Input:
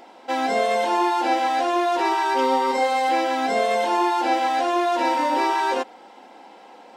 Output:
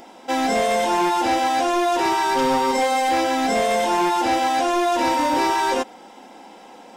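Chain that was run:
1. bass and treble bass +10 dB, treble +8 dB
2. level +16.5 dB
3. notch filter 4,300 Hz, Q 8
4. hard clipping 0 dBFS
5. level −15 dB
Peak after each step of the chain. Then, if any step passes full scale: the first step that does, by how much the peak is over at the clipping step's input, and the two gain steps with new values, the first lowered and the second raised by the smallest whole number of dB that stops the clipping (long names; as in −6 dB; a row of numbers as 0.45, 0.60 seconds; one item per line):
−8.0, +8.5, +8.5, 0.0, −15.0 dBFS
step 2, 8.5 dB
step 2 +7.5 dB, step 5 −6 dB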